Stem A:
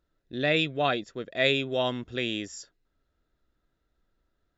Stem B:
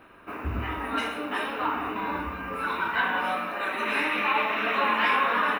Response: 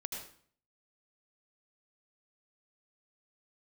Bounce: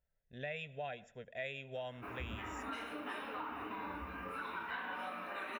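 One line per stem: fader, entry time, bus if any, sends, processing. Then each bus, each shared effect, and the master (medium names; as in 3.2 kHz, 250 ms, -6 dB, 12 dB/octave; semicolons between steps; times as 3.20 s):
-8.5 dB, 0.00 s, send -20.5 dB, static phaser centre 1.2 kHz, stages 6
-5.0 dB, 1.75 s, no send, flange 1.5 Hz, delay 6.8 ms, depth 9.3 ms, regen -52%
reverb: on, RT60 0.50 s, pre-delay 72 ms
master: compression 3:1, threshold -41 dBFS, peak gain reduction 9.5 dB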